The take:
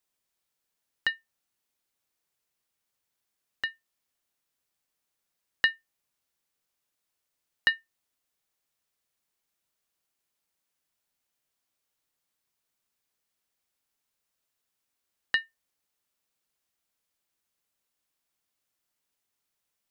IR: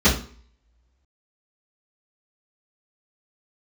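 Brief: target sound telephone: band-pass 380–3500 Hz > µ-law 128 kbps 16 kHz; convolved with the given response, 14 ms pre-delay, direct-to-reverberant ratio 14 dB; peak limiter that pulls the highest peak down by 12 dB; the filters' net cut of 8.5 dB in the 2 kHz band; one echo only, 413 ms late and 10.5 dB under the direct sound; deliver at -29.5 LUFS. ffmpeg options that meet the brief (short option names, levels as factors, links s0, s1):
-filter_complex "[0:a]equalizer=f=2000:t=o:g=-9,alimiter=limit=0.0631:level=0:latency=1,aecho=1:1:413:0.299,asplit=2[s0][s1];[1:a]atrim=start_sample=2205,adelay=14[s2];[s1][s2]afir=irnorm=-1:irlink=0,volume=0.02[s3];[s0][s3]amix=inputs=2:normalize=0,highpass=380,lowpass=3500,volume=7.08" -ar 16000 -c:a pcm_mulaw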